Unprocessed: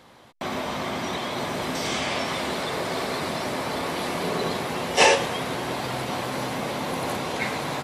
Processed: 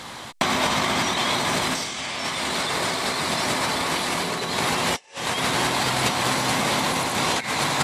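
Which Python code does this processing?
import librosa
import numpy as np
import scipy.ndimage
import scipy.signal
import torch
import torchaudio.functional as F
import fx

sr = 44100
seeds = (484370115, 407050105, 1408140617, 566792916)

y = fx.graphic_eq_10(x, sr, hz=(500, 1000, 2000, 4000, 8000), db=(-4, 3, 3, 4, 9))
y = fx.over_compress(y, sr, threshold_db=-30.0, ratio=-0.5)
y = y * librosa.db_to_amplitude(6.5)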